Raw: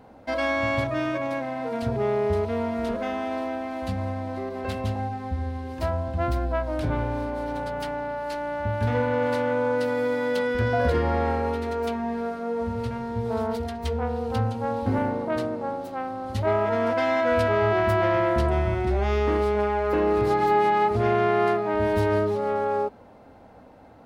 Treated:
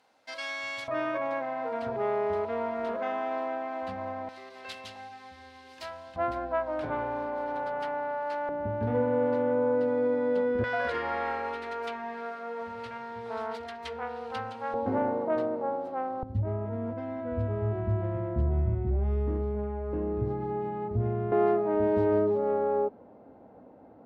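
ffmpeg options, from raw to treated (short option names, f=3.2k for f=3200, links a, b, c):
-af "asetnsamples=n=441:p=0,asendcmd='0.88 bandpass f 1000;4.29 bandpass f 4000;6.16 bandpass f 960;8.49 bandpass f 350;10.64 bandpass f 1800;14.74 bandpass f 590;16.23 bandpass f 100;21.32 bandpass f 350',bandpass=f=5.6k:t=q:w=0.77:csg=0"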